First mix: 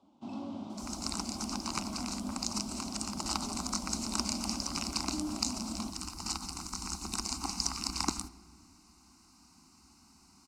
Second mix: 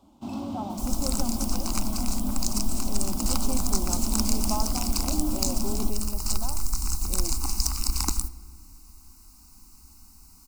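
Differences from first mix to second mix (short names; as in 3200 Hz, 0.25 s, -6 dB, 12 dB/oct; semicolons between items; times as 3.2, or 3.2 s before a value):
speech: unmuted; first sound +6.5 dB; master: remove BPF 140–5300 Hz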